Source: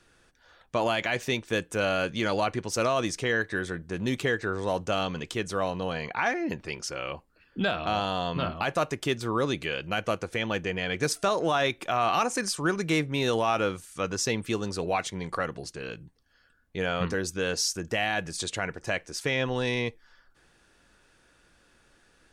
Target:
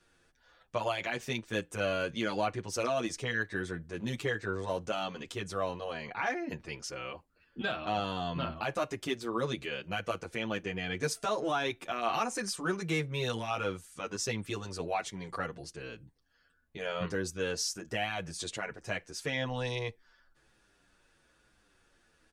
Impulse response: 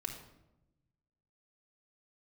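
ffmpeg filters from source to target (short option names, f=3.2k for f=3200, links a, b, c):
-filter_complex "[0:a]asplit=2[a][b];[b]adelay=8.1,afreqshift=-1.1[c];[a][c]amix=inputs=2:normalize=1,volume=-3dB"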